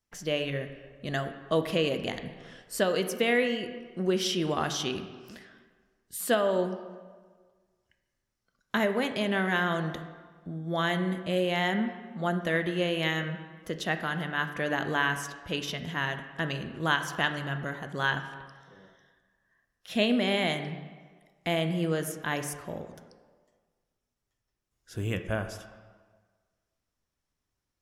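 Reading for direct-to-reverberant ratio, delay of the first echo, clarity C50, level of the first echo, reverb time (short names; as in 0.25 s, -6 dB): 7.5 dB, none, 9.5 dB, none, 1.5 s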